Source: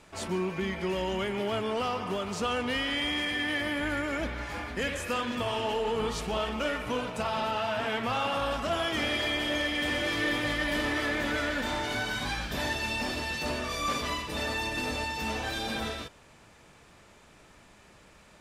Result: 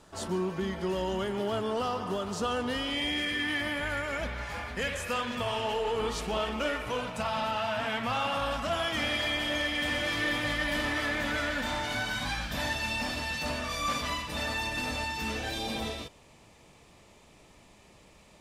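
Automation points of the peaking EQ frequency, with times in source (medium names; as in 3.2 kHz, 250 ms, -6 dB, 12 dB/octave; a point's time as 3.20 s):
peaking EQ -11.5 dB 0.43 oct
2.76 s 2.3 kHz
3.82 s 310 Hz
5.70 s 310 Hz
6.43 s 84 Hz
7.10 s 390 Hz
15.06 s 390 Hz
15.58 s 1.5 kHz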